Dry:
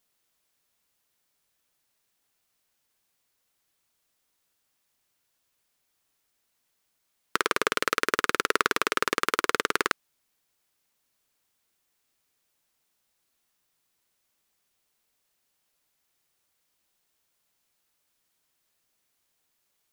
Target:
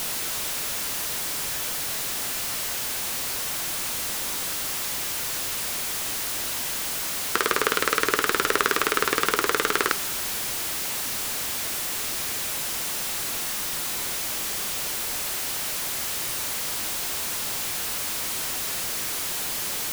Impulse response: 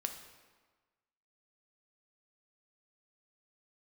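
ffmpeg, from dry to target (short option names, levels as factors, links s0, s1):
-filter_complex "[0:a]aeval=exprs='val(0)+0.5*0.0708*sgn(val(0))':c=same,asplit=2[s0][s1];[1:a]atrim=start_sample=2205,asetrate=27342,aresample=44100[s2];[s1][s2]afir=irnorm=-1:irlink=0,volume=0.237[s3];[s0][s3]amix=inputs=2:normalize=0,volume=0.841"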